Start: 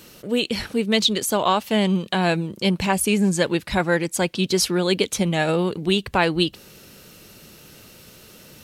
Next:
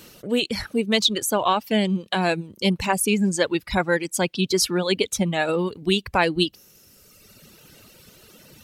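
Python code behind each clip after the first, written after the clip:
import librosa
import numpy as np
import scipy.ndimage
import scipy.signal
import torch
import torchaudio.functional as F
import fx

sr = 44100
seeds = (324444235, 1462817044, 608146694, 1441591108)

y = fx.dereverb_blind(x, sr, rt60_s=1.6)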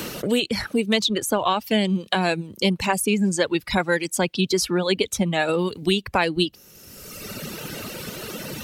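y = fx.band_squash(x, sr, depth_pct=70)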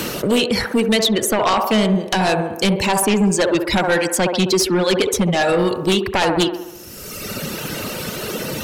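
y = fx.echo_wet_bandpass(x, sr, ms=67, feedback_pct=59, hz=670.0, wet_db=-5.0)
y = fx.fold_sine(y, sr, drive_db=10, ceiling_db=-4.0)
y = y * librosa.db_to_amplitude(-7.0)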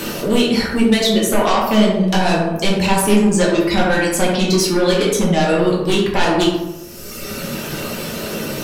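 y = fx.room_shoebox(x, sr, seeds[0], volume_m3=120.0, walls='mixed', distance_m=1.2)
y = y * librosa.db_to_amplitude(-4.0)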